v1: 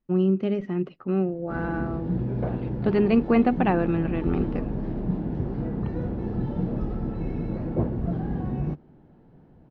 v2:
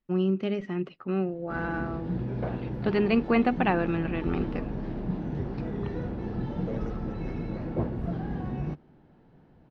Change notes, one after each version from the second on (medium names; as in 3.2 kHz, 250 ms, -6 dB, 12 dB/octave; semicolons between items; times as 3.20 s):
second voice: unmuted; master: add tilt shelf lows -4.5 dB, about 1.1 kHz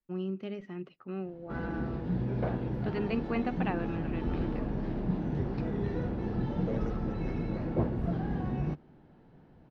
first voice -9.5 dB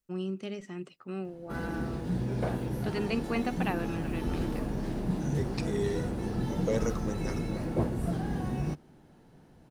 second voice +7.5 dB; master: remove distance through air 290 m